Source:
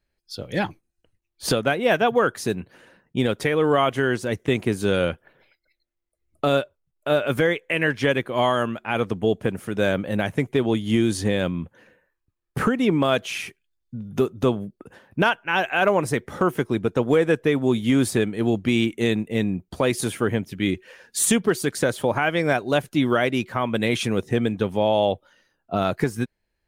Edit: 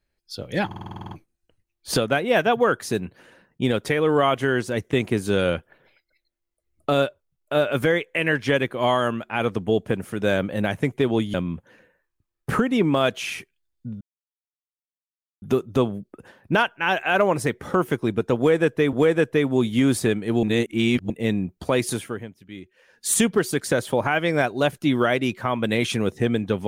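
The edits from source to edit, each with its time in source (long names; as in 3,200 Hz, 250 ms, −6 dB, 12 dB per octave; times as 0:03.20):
0:00.66: stutter 0.05 s, 10 plays
0:10.89–0:11.42: remove
0:14.09: splice in silence 1.41 s
0:17.04–0:17.60: repeat, 2 plays
0:18.54–0:19.21: reverse
0:20.01–0:21.24: duck −16 dB, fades 0.49 s quadratic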